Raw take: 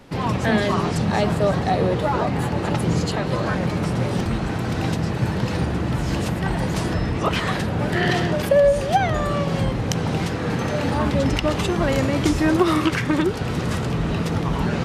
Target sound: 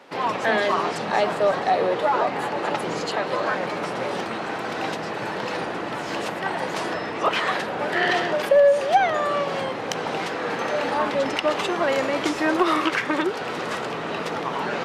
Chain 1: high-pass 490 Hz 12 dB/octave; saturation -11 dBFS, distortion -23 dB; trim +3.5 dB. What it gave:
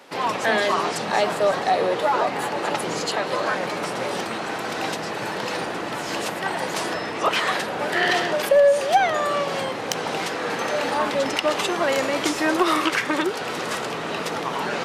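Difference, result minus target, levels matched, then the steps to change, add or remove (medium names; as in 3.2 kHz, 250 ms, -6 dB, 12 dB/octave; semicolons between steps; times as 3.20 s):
8 kHz band +6.5 dB
add after high-pass: treble shelf 5.5 kHz -12 dB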